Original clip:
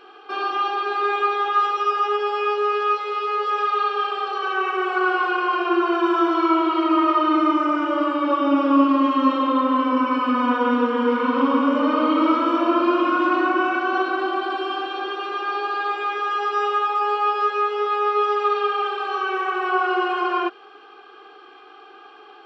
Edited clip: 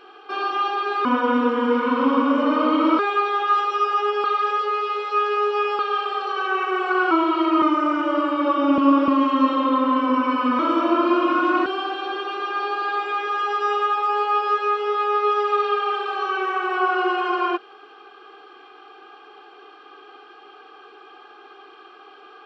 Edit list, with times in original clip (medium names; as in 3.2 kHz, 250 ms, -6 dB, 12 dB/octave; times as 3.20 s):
2.30–3.85 s: reverse
5.17–6.49 s: delete
7.00–7.45 s: delete
8.61–8.91 s: reverse
10.42–12.36 s: move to 1.05 s
13.43–14.58 s: delete